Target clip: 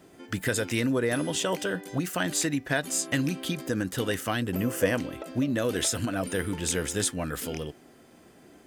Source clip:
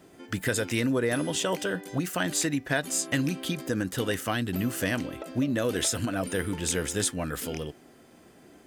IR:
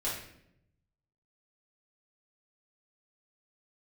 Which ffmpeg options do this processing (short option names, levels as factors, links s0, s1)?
-filter_complex "[0:a]asettb=1/sr,asplit=3[s0][s1][s2];[s0]atrim=end=4.424[s3];[s1]atrim=start=4.42:end=4.97,asetpts=PTS-STARTPTS,afade=t=in:d=0.004:c=qsin,afade=t=out:st=0.546:d=0.004:c=qsin,equalizer=f=500:t=o:w=0.33:g=11,equalizer=f=1000:t=o:w=0.33:g=4,equalizer=f=4000:t=o:w=0.33:g=-10[s4];[s2]atrim=start=4.966[s5];[s3][s4]acrossfade=d=0.004:c1=hsin:c2=qsin[s6];[s6][s5]acrossfade=d=0.004:c1=qsin:c2=hsin"